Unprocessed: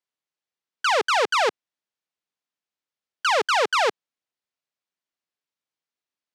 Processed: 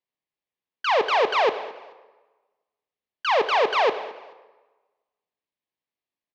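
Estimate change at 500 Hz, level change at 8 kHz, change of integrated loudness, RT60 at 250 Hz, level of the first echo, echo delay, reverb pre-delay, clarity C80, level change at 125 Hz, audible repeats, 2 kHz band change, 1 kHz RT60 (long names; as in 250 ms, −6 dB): +2.0 dB, below −10 dB, −0.5 dB, 1.1 s, −19.5 dB, 216 ms, 16 ms, 12.5 dB, can't be measured, 2, −2.5 dB, 1.2 s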